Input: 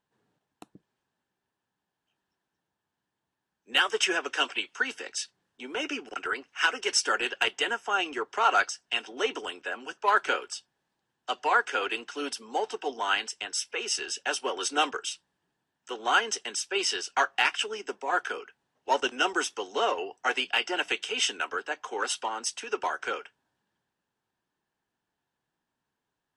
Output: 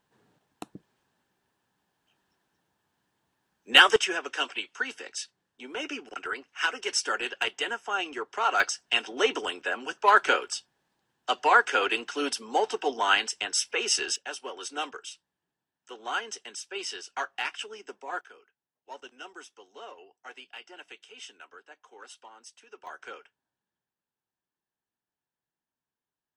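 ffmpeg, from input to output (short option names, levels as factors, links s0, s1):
-af "asetnsamples=n=441:p=0,asendcmd='3.96 volume volume -2.5dB;8.6 volume volume 4dB;14.16 volume volume -7.5dB;18.21 volume volume -18dB;22.87 volume volume -10.5dB',volume=2.51"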